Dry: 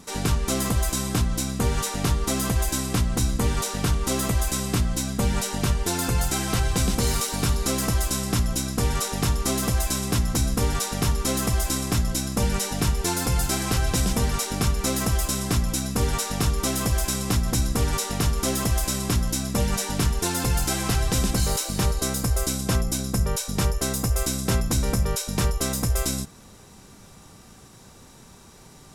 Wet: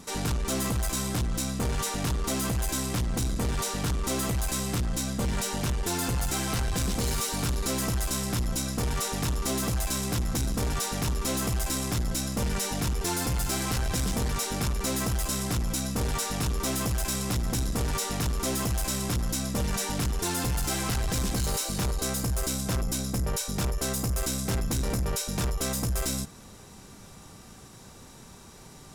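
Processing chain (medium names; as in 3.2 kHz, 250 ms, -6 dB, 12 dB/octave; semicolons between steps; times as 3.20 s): saturation -24 dBFS, distortion -11 dB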